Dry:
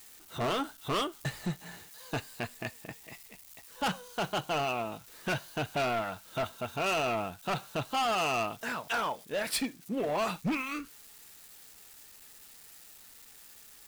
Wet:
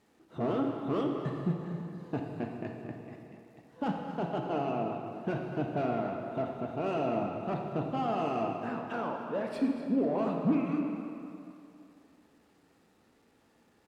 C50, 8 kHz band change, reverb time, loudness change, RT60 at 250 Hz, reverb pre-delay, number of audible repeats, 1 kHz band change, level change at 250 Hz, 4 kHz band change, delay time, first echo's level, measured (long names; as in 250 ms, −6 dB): 2.5 dB, below −20 dB, 2.7 s, −0.5 dB, 2.5 s, 26 ms, 1, −2.5 dB, +6.5 dB, −15.0 dB, 240 ms, −13.0 dB